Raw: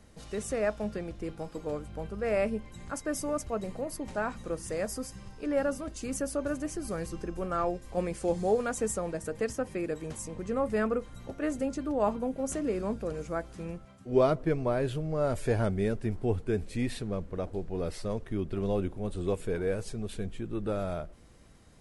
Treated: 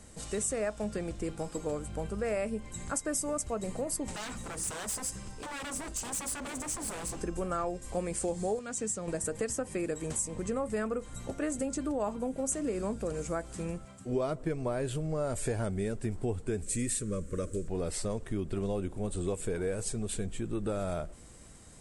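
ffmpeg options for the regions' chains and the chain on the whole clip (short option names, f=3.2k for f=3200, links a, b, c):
-filter_complex "[0:a]asettb=1/sr,asplit=3[a][b][c];[a]atrim=end=4.134[d];[b]atrim=start=4.13:end=7.21,asetpts=PTS-STARTPTS,afade=t=in:d=0.004:c=qsin,afade=t=out:st=3.076:d=0.004:c=qsin,acompressor=threshold=-33dB:ratio=2.5:attack=3.2:release=140:knee=1:detection=peak,aeval=exprs='0.0126*(abs(mod(val(0)/0.0126+3,4)-2)-1)':c=same[e];[c]atrim=start=7.206[f];[d][e]acrossfade=d=0.004:c1=hsin:c2=qsin[g];[g][f]acrossfade=d=0.004:c1=qsin:c2=hsin,asettb=1/sr,asplit=3[h][i][j];[h]atrim=end=8.594[k];[i]atrim=start=8.59:end=9.08,asetpts=PTS-STARTPTS,afade=t=in:d=0.004:c=qsin,afade=t=out:st=0.486:d=0.004:c=qsin,highpass=120,lowpass=5.2k,equalizer=f=790:w=0.41:g=-10.5[l];[j]atrim=start=9.076[m];[k][l]acrossfade=d=0.004:c1=hsin:c2=qsin[n];[n][m]acrossfade=d=0.004:c1=qsin:c2=hsin,asettb=1/sr,asplit=3[o][p][q];[o]atrim=end=16.624[r];[p]atrim=start=16.62:end=17.68,asetpts=PTS-STARTPTS,afade=t=in:d=0.004:c=qsin,afade=t=out:st=1.056:d=0.004:c=qsin,asuperstop=centerf=800:order=12:qfactor=1.8,highshelf=f=5.4k:t=q:w=1.5:g=7[s];[q]atrim=start=17.676[t];[r][s]acrossfade=d=0.004:c1=hsin:c2=qsin[u];[u][t]acrossfade=d=0.004:c1=qsin:c2=hsin,equalizer=f=8.1k:w=2:g=14.5,acompressor=threshold=-33dB:ratio=4,volume=3dB"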